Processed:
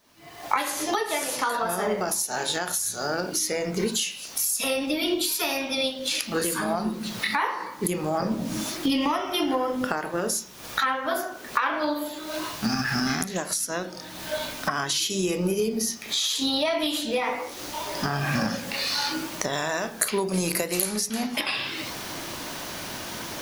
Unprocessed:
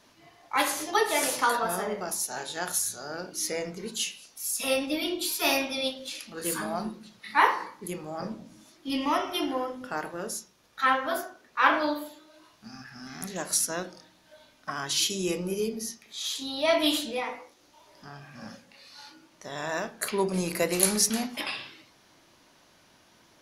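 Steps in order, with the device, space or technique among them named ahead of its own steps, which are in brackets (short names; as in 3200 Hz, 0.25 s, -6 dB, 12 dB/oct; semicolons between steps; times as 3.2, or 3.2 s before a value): cheap recorder with automatic gain (white noise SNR 36 dB; recorder AGC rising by 52 dB/s); 19.53–20.82 high shelf 4000 Hz +6 dB; gain -6 dB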